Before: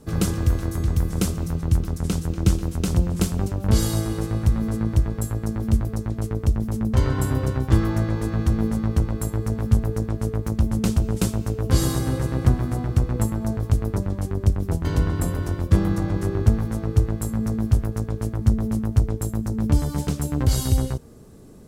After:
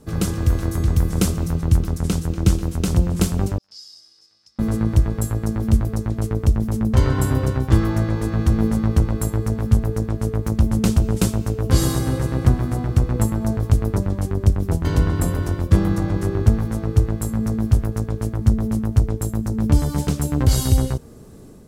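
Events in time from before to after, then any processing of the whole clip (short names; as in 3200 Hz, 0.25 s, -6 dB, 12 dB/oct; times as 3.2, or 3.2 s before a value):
3.58–4.59 band-pass 5100 Hz, Q 19
whole clip: AGC gain up to 4.5 dB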